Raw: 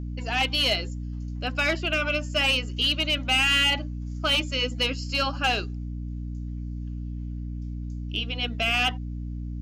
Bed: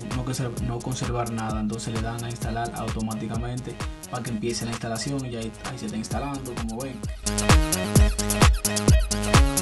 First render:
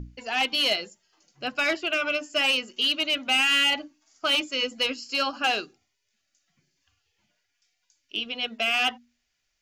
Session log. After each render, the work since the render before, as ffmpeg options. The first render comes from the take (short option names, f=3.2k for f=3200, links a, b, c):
-af "bandreject=f=60:t=h:w=6,bandreject=f=120:t=h:w=6,bandreject=f=180:t=h:w=6,bandreject=f=240:t=h:w=6,bandreject=f=300:t=h:w=6"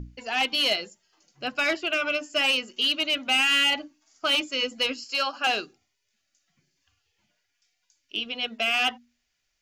-filter_complex "[0:a]asettb=1/sr,asplit=3[a][b][c];[a]atrim=end=5.044[d];[b]atrim=start=5.04:end=5.47,asetpts=PTS-STARTPTS,afade=t=in:d=0.004:c=qsin,afade=t=out:st=0.426:d=0.004:c=qsin,highpass=440[e];[c]atrim=start=5.466[f];[d][e]acrossfade=d=0.004:c1=hsin:c2=qsin[g];[g][f]acrossfade=d=0.004:c1=qsin:c2=hsin"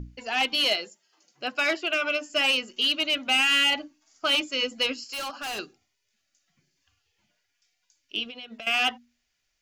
-filter_complex "[0:a]asettb=1/sr,asplit=3[a][b][c];[a]atrim=end=0.644[d];[b]atrim=start=0.64:end=2.3,asetpts=PTS-STARTPTS,afade=t=in:d=0.004:c=qsin,afade=t=out:st=1.656:d=0.004:c=qsin,highpass=240[e];[c]atrim=start=2.296[f];[d][e]acrossfade=d=0.004:c1=hsin:c2=qsin[g];[g][f]acrossfade=d=0.004:c1=qsin:c2=hsin,asettb=1/sr,asplit=3[h][i][j];[h]atrim=end=5.094[k];[i]atrim=start=5.09:end=5.59,asetpts=PTS-STARTPTS,afade=t=in:d=0.004:c=qsin,afade=t=out:st=0.496:d=0.004:c=qsin,asoftclip=type=hard:threshold=-31dB[l];[j]atrim=start=5.586[m];[k][l]acrossfade=d=0.004:c1=hsin:c2=qsin[n];[n][m]acrossfade=d=0.004:c1=qsin:c2=hsin,asettb=1/sr,asplit=3[o][p][q];[o]atrim=end=8.244[r];[p]atrim=start=8.24:end=8.67,asetpts=PTS-STARTPTS,afade=t=in:d=0.004:c=qsin,afade=t=out:st=0.426:d=0.004:c=qsin,acompressor=threshold=-36dB:ratio=16:attack=3.2:release=140:knee=1:detection=peak[s];[q]atrim=start=8.666[t];[r][s]acrossfade=d=0.004:c1=hsin:c2=qsin[u];[u][t]acrossfade=d=0.004:c1=qsin:c2=hsin"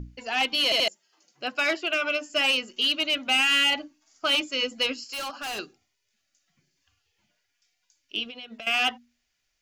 -filter_complex "[0:a]asplit=4[a][b][c][d];[a]atrim=end=0.722[e];[b]atrim=start=0.638:end=0.722[f];[c]atrim=start=0.638:end=0.722[g];[d]atrim=start=0.878[h];[e][f]acrossfade=d=0.004:c1=hsin:c2=hsin[i];[i][g]acrossfade=d=0.004:c1=hsin:c2=hsin[j];[j][h]acrossfade=d=0.004:c1=hsin:c2=hsin"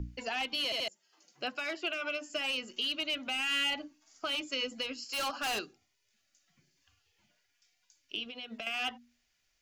-filter_complex "[0:a]acrossover=split=150[a][b];[b]acompressor=threshold=-27dB:ratio=4[c];[a][c]amix=inputs=2:normalize=0,alimiter=limit=-23.5dB:level=0:latency=1:release=458"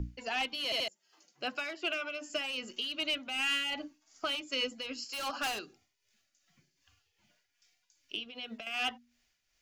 -filter_complex "[0:a]tremolo=f=2.6:d=0.55,asplit=2[a][b];[b]volume=30dB,asoftclip=hard,volume=-30dB,volume=-11dB[c];[a][c]amix=inputs=2:normalize=0"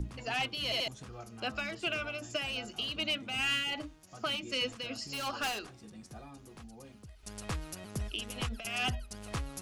-filter_complex "[1:a]volume=-20dB[a];[0:a][a]amix=inputs=2:normalize=0"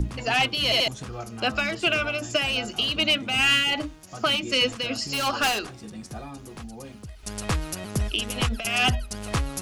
-af "volume=11dB"